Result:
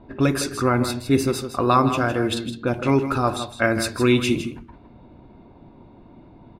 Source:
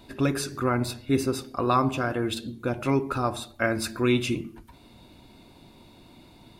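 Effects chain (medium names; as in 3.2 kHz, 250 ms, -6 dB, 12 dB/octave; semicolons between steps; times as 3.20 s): level-controlled noise filter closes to 970 Hz, open at -23.5 dBFS; on a send: delay 160 ms -10 dB; on the sum: trim +5 dB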